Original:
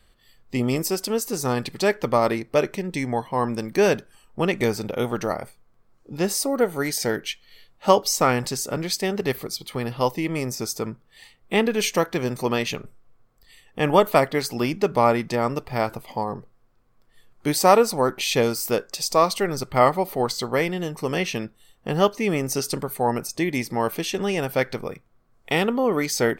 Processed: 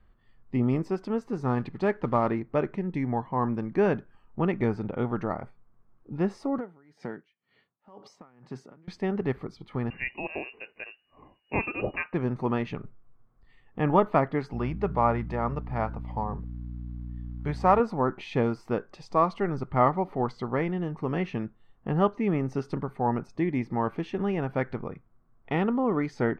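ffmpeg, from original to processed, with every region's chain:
-filter_complex "[0:a]asettb=1/sr,asplit=3[s0][s1][s2];[s0]atrim=end=1.444[s3];[s1]atrim=start=1.44:end=2.3,asetpts=PTS-STARTPTS,afade=t=in:d=0.004:c=qsin,afade=t=out:st=0.856:d=0.004:c=qsin,bandreject=f=5600:w=26,acrusher=bits=4:mode=log:mix=0:aa=0.000001[s4];[s2]atrim=start=2.296[s5];[s3][s4]acrossfade=d=0.004:c1=hsin:c2=qsin[s6];[s6][s5]acrossfade=d=0.004:c1=qsin:c2=hsin,asettb=1/sr,asplit=3[s7][s8][s9];[s7]atrim=end=6.584[s10];[s8]atrim=start=6.58:end=8.88,asetpts=PTS-STARTPTS,afade=t=in:d=0.004:c=qsin,afade=t=out:st=2.296:d=0.004:c=qsin,highpass=f=130:w=0.5412,highpass=f=130:w=1.3066,acompressor=threshold=0.0562:ratio=5:attack=3.2:release=140:knee=1:detection=peak,aeval=exprs='val(0)*pow(10,-25*(0.5-0.5*cos(2*PI*2*n/s))/20)':c=same[s11];[s9]atrim=start=8.876[s12];[s10][s11]acrossfade=d=0.004:c1=hsin:c2=qsin[s13];[s13][s12]acrossfade=d=0.004:c1=qsin:c2=hsin,asettb=1/sr,asplit=3[s14][s15][s16];[s14]atrim=end=9.904[s17];[s15]atrim=start=9.9:end=12.14,asetpts=PTS-STARTPTS,afade=t=in:d=0.004:c=qsin,afade=t=out:st=2.236:d=0.004:c=qsin,lowpass=f=2500:t=q:w=0.5098,lowpass=f=2500:t=q:w=0.6013,lowpass=f=2500:t=q:w=0.9,lowpass=f=2500:t=q:w=2.563,afreqshift=-2900,lowshelf=f=710:t=q:w=1.5:g=8.5,bandreject=f=1400:w=15[s18];[s16]atrim=start=12.136[s19];[s17][s18]acrossfade=d=0.004:c1=hsin:c2=qsin[s20];[s20][s19]acrossfade=d=0.004:c1=qsin:c2=hsin,asettb=1/sr,asplit=3[s21][s22][s23];[s21]atrim=end=14.534[s24];[s22]atrim=start=14.53:end=17.8,asetpts=PTS-STARTPTS,afade=t=in:d=0.004:c=qsin,afade=t=out:st=3.266:d=0.004:c=qsin,equalizer=f=290:w=2.9:g=-11,aeval=exprs='val(0)+0.0178*(sin(2*PI*60*n/s)+sin(2*PI*2*60*n/s)/2+sin(2*PI*3*60*n/s)/3+sin(2*PI*4*60*n/s)/4+sin(2*PI*5*60*n/s)/5)':c=same,acrusher=bits=7:mode=log:mix=0:aa=0.000001[s25];[s23]atrim=start=17.796[s26];[s24][s25]acrossfade=d=0.004:c1=hsin:c2=qsin[s27];[s27][s26]acrossfade=d=0.004:c1=qsin:c2=hsin,lowpass=1200,equalizer=f=530:t=o:w=0.99:g=-8"

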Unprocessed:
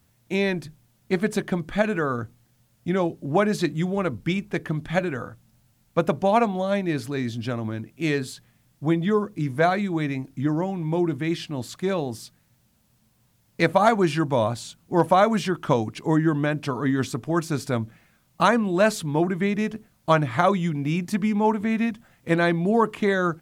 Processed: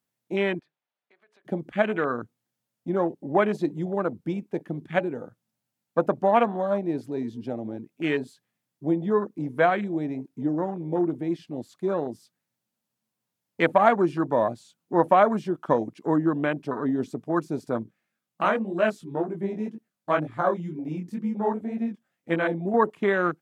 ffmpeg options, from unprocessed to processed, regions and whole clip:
-filter_complex "[0:a]asettb=1/sr,asplit=3[s0][s1][s2];[s0]atrim=end=0.594[s3];[s1]atrim=start=0.59:end=1.45,asetpts=PTS-STARTPTS,afade=t=in:d=0.004:c=qsin,afade=t=out:st=0.856:d=0.004:c=qsin,acrossover=split=490 3900:gain=0.0794 1 0.0631[s4][s5][s6];[s4][s5][s6]amix=inputs=3:normalize=0,acompressor=threshold=0.00794:ratio=6:attack=3.2:release=140:knee=1:detection=peak[s7];[s2]atrim=start=1.446[s8];[s3][s7]acrossfade=d=0.004:c1=hsin:c2=qsin[s9];[s9][s8]acrossfade=d=0.004:c1=qsin:c2=hsin,asettb=1/sr,asplit=3[s10][s11][s12];[s10]atrim=end=17.834[s13];[s11]atrim=start=17.83:end=22.74,asetpts=PTS-STARTPTS,afade=t=in:d=0.004:c=qsin,afade=t=out:st=4.906:d=0.004:c=qsin,equalizer=f=930:w=4:g=-3.5,flanger=delay=17.5:depth=5.7:speed=2[s14];[s12]atrim=start=22.736[s15];[s13][s14]acrossfade=d=0.004:c1=hsin:c2=qsin[s16];[s16][s15]acrossfade=d=0.004:c1=qsin:c2=hsin,afwtdn=0.0398,highpass=230,deesser=0.6"

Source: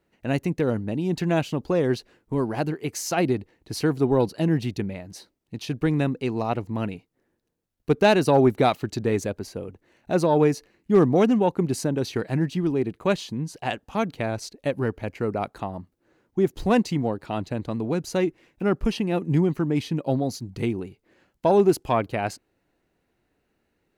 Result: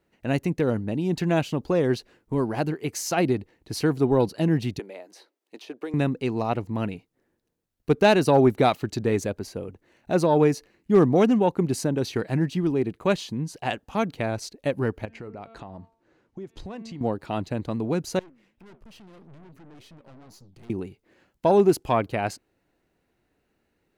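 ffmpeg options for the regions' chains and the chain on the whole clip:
-filter_complex "[0:a]asettb=1/sr,asplit=3[s0][s1][s2];[s0]atrim=end=4.794[s3];[s1]atrim=start=4.79:end=5.94,asetpts=PTS-STARTPTS,afade=t=in:d=0.004:c=qsin,afade=t=out:st=1.146:d=0.004:c=qsin,highpass=f=350:w=0.5412,highpass=f=350:w=1.3066,acrossover=split=1100|3300[s4][s5][s6];[s4]acompressor=threshold=0.0282:ratio=4[s7];[s5]acompressor=threshold=0.00316:ratio=4[s8];[s6]acompressor=threshold=0.00178:ratio=4[s9];[s7][s8][s9]amix=inputs=3:normalize=0[s10];[s2]atrim=start=5.936[s11];[s3][s10]acrossfade=d=0.004:c1=hsin:c2=qsin[s12];[s12][s11]acrossfade=d=0.004:c1=qsin:c2=hsin,asettb=1/sr,asplit=3[s13][s14][s15];[s13]atrim=end=15.054[s16];[s14]atrim=start=15.05:end=17.01,asetpts=PTS-STARTPTS,afade=t=in:d=0.004:c=qsin,afade=t=out:st=1.956:d=0.004:c=qsin,lowpass=7000,bandreject=f=225.6:t=h:w=4,bandreject=f=451.2:t=h:w=4,bandreject=f=676.8:t=h:w=4,bandreject=f=902.4:t=h:w=4,bandreject=f=1128:t=h:w=4,bandreject=f=1353.6:t=h:w=4,bandreject=f=1579.2:t=h:w=4,bandreject=f=1804.8:t=h:w=4,bandreject=f=2030.4:t=h:w=4,bandreject=f=2256:t=h:w=4,bandreject=f=2481.6:t=h:w=4,bandreject=f=2707.2:t=h:w=4,bandreject=f=2932.8:t=h:w=4,bandreject=f=3158.4:t=h:w=4,bandreject=f=3384:t=h:w=4,bandreject=f=3609.6:t=h:w=4,bandreject=f=3835.2:t=h:w=4,bandreject=f=4060.8:t=h:w=4,bandreject=f=4286.4:t=h:w=4,bandreject=f=4512:t=h:w=4,acompressor=threshold=0.0141:ratio=4:attack=3.2:release=140:knee=1:detection=peak[s17];[s15]atrim=start=17.006[s18];[s16][s17]acrossfade=d=0.004:c1=hsin:c2=qsin[s19];[s19][s18]acrossfade=d=0.004:c1=qsin:c2=hsin,asettb=1/sr,asplit=3[s20][s21][s22];[s20]atrim=end=18.194[s23];[s21]atrim=start=18.19:end=20.7,asetpts=PTS-STARTPTS,afade=t=in:d=0.004:c=qsin,afade=t=out:st=2.506:d=0.004:c=qsin,acompressor=threshold=0.00447:ratio=1.5:attack=3.2:release=140:knee=1:detection=peak,flanger=delay=5.6:depth=7.6:regen=-88:speed=1.8:shape=triangular,aeval=exprs='(tanh(224*val(0)+0.6)-tanh(0.6))/224':c=same[s24];[s22]atrim=start=20.696[s25];[s23][s24]acrossfade=d=0.004:c1=hsin:c2=qsin[s26];[s26][s25]acrossfade=d=0.004:c1=qsin:c2=hsin"

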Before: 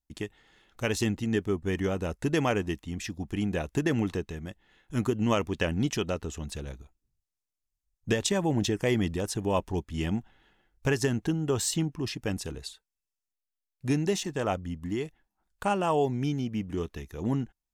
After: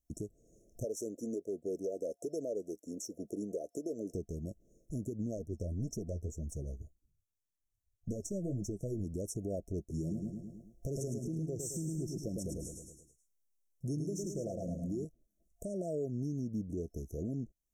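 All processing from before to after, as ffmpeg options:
-filter_complex "[0:a]asettb=1/sr,asplit=3[s0][s1][s2];[s0]atrim=end=0.844[s3];[s1]atrim=start=0.84:end=4.14,asetpts=PTS-STARTPTS,afade=t=in:d=0.004:c=qsin,afade=t=out:st=3.296:d=0.004:c=qsin,highpass=370,equalizer=f=490:t=o:w=0.76:g=7.5,aphaser=in_gain=1:out_gain=1:delay=3.9:decay=0.35:speed=1.2:type=sinusoidal[s4];[s2]atrim=start=4.136[s5];[s3][s4]acrossfade=d=0.004:c1=hsin:c2=qsin[s6];[s6][s5]acrossfade=d=0.004:c1=qsin:c2=hsin,asettb=1/sr,asplit=3[s7][s8][s9];[s7]atrim=end=5.374[s10];[s8]atrim=start=5.37:end=9.04,asetpts=PTS-STARTPTS,afade=t=in:d=0.004:c=qsin,afade=t=out:st=3.666:d=0.004:c=qsin,aeval=exprs='if(lt(val(0),0),0.708*val(0),val(0))':c=same,equalizer=f=81:w=1.1:g=9.5,flanger=delay=2.9:depth=9.3:regen=30:speed=1.8:shape=triangular[s11];[s9]atrim=start=9.036[s12];[s10][s11]acrossfade=d=0.004:c1=hsin:c2=qsin[s13];[s13][s12]acrossfade=d=0.004:c1=qsin:c2=hsin,asettb=1/sr,asplit=3[s14][s15][s16];[s14]atrim=end=9.794[s17];[s15]atrim=start=9.79:end=15.05,asetpts=PTS-STARTPTS,afade=t=in:d=0.004:c=qsin,afade=t=out:st=5.256:d=0.004:c=qsin,aecho=1:1:5.7:0.32,atrim=end_sample=231966,aecho=1:1:107|214|321|428|535:0.531|0.234|0.103|0.0452|0.0199,atrim=end_sample=231966[s18];[s16]atrim=start=15.046[s19];[s17][s18]acrossfade=d=0.004:c1=hsin:c2=qsin[s20];[s20][s19]acrossfade=d=0.004:c1=qsin:c2=hsin,acompressor=threshold=0.00631:ratio=2,afftfilt=real='re*(1-between(b*sr/4096,690,5400))':imag='im*(1-between(b*sr/4096,690,5400))':win_size=4096:overlap=0.75,alimiter=level_in=2.66:limit=0.0631:level=0:latency=1:release=95,volume=0.376,volume=1.5"

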